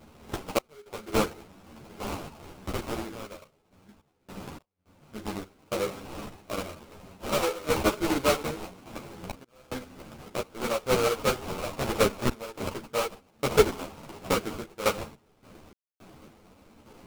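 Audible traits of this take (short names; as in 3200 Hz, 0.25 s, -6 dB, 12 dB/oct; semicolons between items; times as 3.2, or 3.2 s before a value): random-step tremolo, depth 100%; aliases and images of a low sample rate 1800 Hz, jitter 20%; a shimmering, thickened sound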